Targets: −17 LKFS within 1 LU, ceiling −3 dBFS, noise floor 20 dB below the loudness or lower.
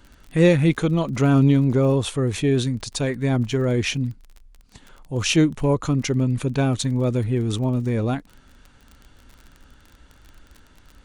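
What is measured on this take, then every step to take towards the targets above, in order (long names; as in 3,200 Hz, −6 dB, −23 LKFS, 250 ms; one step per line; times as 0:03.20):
crackle rate 31 per second; integrated loudness −21.0 LKFS; sample peak −6.0 dBFS; target loudness −17.0 LKFS
→ click removal
level +4 dB
brickwall limiter −3 dBFS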